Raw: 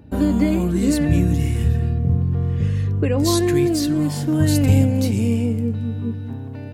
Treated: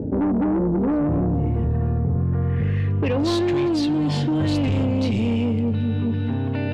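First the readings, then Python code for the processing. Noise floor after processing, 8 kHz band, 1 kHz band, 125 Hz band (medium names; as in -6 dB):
-23 dBFS, -14.5 dB, +2.0 dB, -3.0 dB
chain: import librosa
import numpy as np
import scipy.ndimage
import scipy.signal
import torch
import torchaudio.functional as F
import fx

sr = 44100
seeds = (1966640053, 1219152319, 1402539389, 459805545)

y = fx.highpass(x, sr, hz=110.0, slope=6)
y = fx.dynamic_eq(y, sr, hz=1700.0, q=1.3, threshold_db=-42.0, ratio=4.0, max_db=-5)
y = fx.filter_sweep_lowpass(y, sr, from_hz=460.0, to_hz=3200.0, start_s=0.54, end_s=3.33, q=1.9)
y = 10.0 ** (-18.0 / 20.0) * np.tanh(y / 10.0 ** (-18.0 / 20.0))
y = fx.env_flatten(y, sr, amount_pct=70)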